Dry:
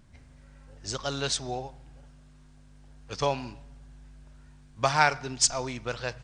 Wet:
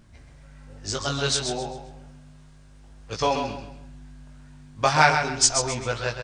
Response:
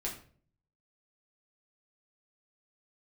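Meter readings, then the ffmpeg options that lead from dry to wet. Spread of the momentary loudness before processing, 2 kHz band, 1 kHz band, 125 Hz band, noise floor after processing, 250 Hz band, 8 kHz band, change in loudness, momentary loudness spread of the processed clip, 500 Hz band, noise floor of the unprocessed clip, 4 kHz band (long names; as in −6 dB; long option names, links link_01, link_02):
17 LU, +5.5 dB, +5.0 dB, +5.5 dB, −50 dBFS, +5.5 dB, +5.5 dB, +5.0 dB, 18 LU, +5.0 dB, −55 dBFS, +5.5 dB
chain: -af "flanger=delay=17.5:depth=3.5:speed=0.35,aecho=1:1:132|264|396|528:0.447|0.138|0.0429|0.0133,volume=7.5dB"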